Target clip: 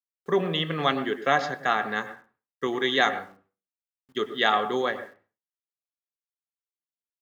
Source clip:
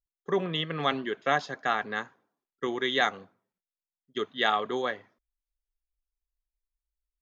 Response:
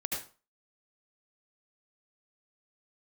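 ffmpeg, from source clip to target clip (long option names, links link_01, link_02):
-filter_complex "[0:a]acrusher=bits=10:mix=0:aa=0.000001,asplit=2[link_01][link_02];[1:a]atrim=start_sample=2205,lowpass=2400,adelay=23[link_03];[link_02][link_03]afir=irnorm=-1:irlink=0,volume=-12.5dB[link_04];[link_01][link_04]amix=inputs=2:normalize=0,volume=3dB"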